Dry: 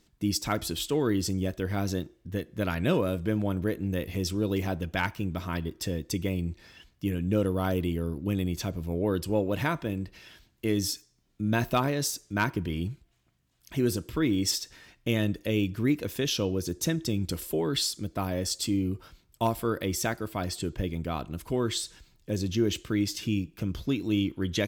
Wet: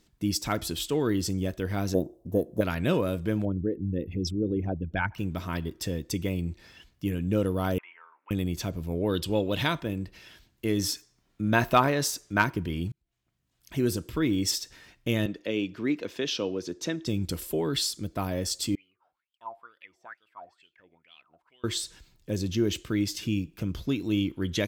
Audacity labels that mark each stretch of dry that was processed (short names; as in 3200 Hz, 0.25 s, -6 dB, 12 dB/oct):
1.940000	2.610000	EQ curve 100 Hz 0 dB, 460 Hz +9 dB, 690 Hz +15 dB, 1900 Hz -23 dB, 12000 Hz +3 dB
3.450000	5.180000	formant sharpening exponent 2
7.780000	8.310000	Chebyshev band-pass 910–2400 Hz, order 3
9.090000	9.800000	bell 3500 Hz +13 dB 0.62 oct
10.790000	12.420000	bell 1200 Hz +7 dB 2.6 oct
12.920000	13.790000	fade in
15.260000	17.070000	three-band isolator lows -17 dB, under 210 Hz, highs -20 dB, over 6200 Hz
18.750000	21.640000	wah 2.2 Hz 690–3200 Hz, Q 13